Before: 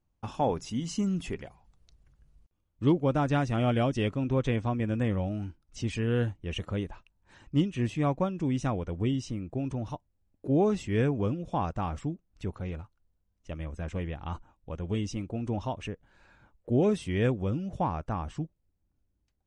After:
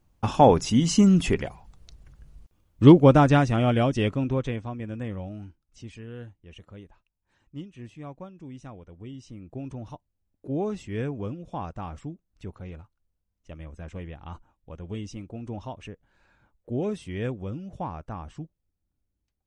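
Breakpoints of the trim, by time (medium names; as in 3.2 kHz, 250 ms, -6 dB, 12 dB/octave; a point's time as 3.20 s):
3.07 s +11.5 dB
3.62 s +4 dB
4.20 s +4 dB
4.66 s -5 dB
5.41 s -5 dB
6.13 s -13 dB
9.06 s -13 dB
9.56 s -4 dB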